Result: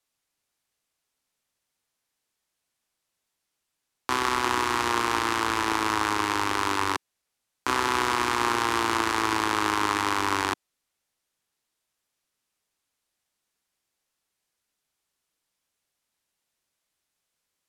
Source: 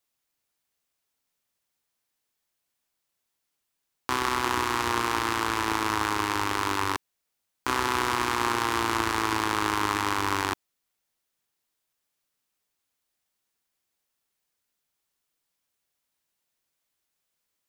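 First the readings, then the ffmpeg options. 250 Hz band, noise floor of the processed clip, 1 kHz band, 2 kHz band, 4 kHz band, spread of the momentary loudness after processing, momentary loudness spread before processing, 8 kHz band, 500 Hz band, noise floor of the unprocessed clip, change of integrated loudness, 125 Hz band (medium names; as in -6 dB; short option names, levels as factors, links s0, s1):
+1.0 dB, -82 dBFS, +1.5 dB, +1.5 dB, +1.5 dB, 5 LU, 5 LU, +1.0 dB, +1.5 dB, -81 dBFS, +1.5 dB, -2.0 dB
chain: -filter_complex "[0:a]lowpass=12000,acrossover=split=210|4400[s0][s1][s2];[s0]alimiter=level_in=5.31:limit=0.0631:level=0:latency=1:release=169,volume=0.188[s3];[s3][s1][s2]amix=inputs=3:normalize=0,volume=1.19"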